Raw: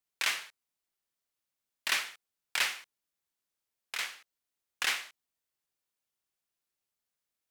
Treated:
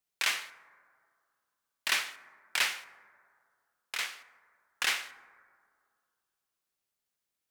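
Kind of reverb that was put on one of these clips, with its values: plate-style reverb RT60 2.1 s, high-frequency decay 0.3×, DRR 14 dB; trim +1 dB

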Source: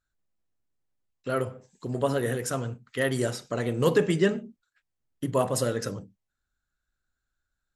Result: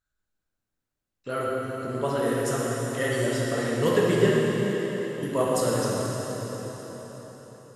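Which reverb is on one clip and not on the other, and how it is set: plate-style reverb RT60 4.9 s, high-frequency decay 0.9×, DRR -5 dB; trim -3 dB

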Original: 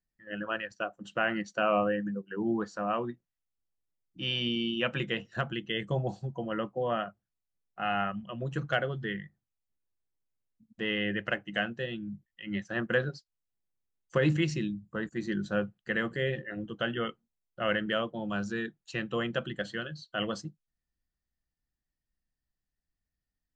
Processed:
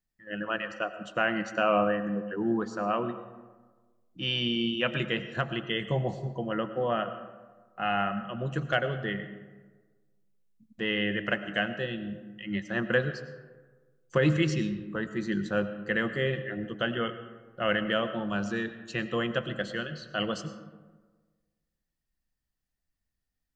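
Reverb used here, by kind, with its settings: algorithmic reverb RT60 1.4 s, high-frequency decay 0.45×, pre-delay 60 ms, DRR 11 dB; trim +2 dB

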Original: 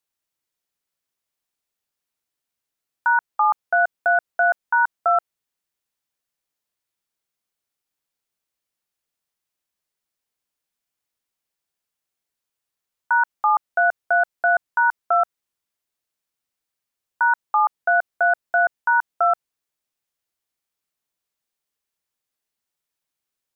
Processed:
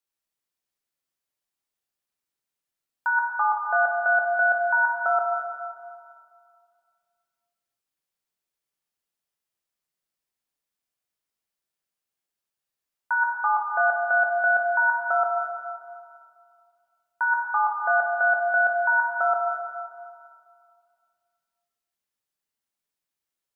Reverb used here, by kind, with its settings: plate-style reverb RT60 2.2 s, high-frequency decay 0.8×, DRR 0 dB; trim -6 dB

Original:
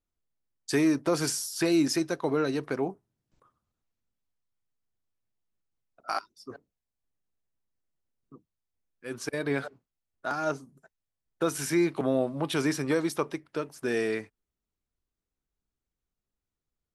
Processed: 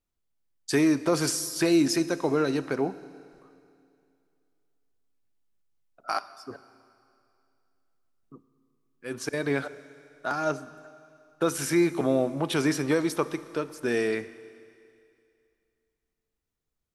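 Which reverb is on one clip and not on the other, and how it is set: Schroeder reverb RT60 2.5 s, combs from 26 ms, DRR 15 dB; trim +2 dB

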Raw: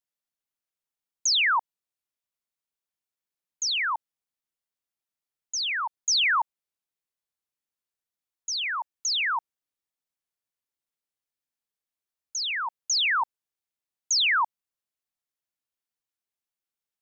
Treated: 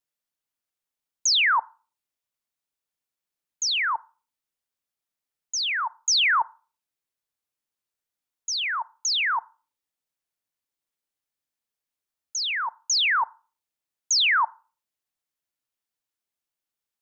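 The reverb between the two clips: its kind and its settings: FDN reverb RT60 0.36 s, low-frequency decay 0.9×, high-frequency decay 0.4×, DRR 18 dB; trim +2 dB

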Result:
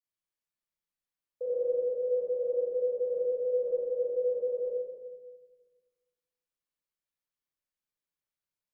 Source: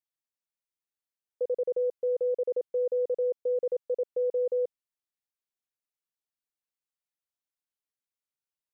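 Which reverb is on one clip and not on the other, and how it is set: simulated room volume 930 m³, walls mixed, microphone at 5.6 m; trim -11 dB

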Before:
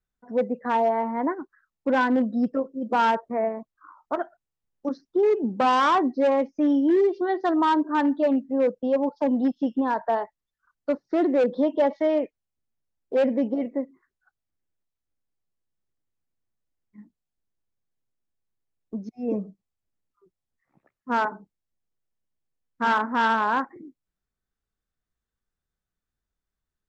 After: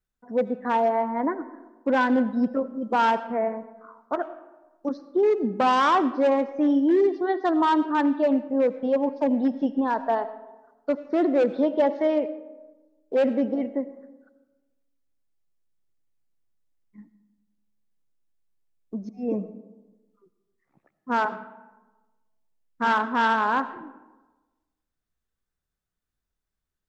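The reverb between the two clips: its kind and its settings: algorithmic reverb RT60 1.2 s, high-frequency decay 0.45×, pre-delay 45 ms, DRR 14 dB

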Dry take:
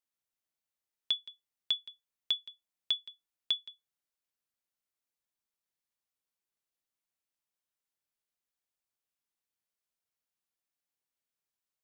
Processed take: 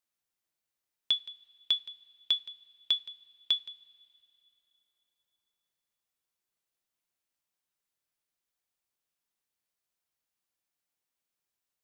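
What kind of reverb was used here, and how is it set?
two-slope reverb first 0.26 s, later 3.3 s, from -22 dB, DRR 11.5 dB; trim +2.5 dB

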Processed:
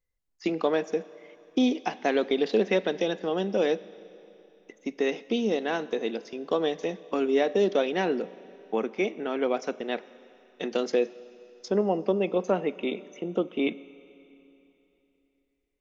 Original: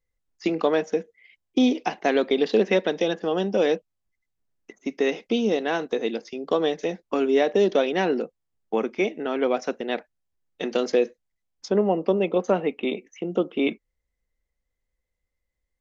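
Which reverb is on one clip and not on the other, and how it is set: Schroeder reverb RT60 3.2 s, combs from 29 ms, DRR 18 dB; trim -3.5 dB

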